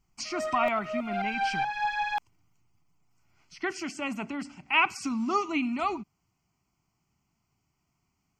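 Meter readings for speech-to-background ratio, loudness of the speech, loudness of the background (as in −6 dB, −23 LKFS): 1.0 dB, −30.5 LKFS, −31.5 LKFS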